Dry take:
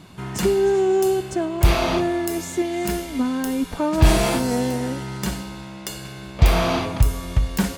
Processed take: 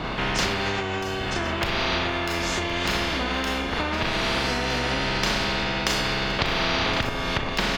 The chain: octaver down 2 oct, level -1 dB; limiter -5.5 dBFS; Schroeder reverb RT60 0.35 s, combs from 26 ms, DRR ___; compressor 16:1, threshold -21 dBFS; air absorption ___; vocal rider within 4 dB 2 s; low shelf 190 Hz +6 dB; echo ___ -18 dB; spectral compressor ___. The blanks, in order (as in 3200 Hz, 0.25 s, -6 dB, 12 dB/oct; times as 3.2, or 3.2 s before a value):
-0.5 dB, 260 m, 1.068 s, 4:1